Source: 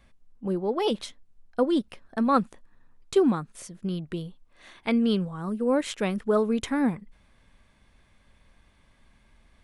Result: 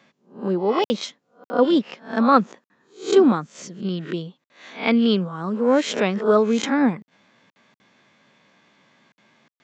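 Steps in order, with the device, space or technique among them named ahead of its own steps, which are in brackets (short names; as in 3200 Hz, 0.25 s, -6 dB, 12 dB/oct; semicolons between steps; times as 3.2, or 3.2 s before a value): spectral swells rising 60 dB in 0.35 s; call with lost packets (HPF 120 Hz 24 dB/oct; downsampling 16000 Hz; packet loss packets of 60 ms); HPF 170 Hz 12 dB/oct; gain +6 dB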